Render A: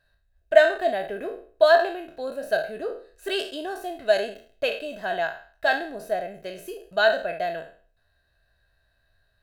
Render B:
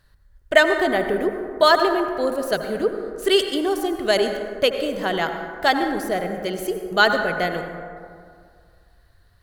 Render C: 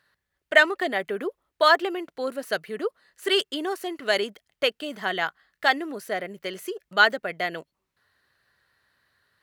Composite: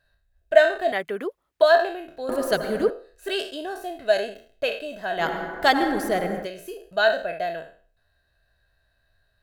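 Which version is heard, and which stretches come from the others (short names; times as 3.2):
A
0.92–1.62 from C
2.29–2.9 from B
5.21–6.44 from B, crossfade 0.10 s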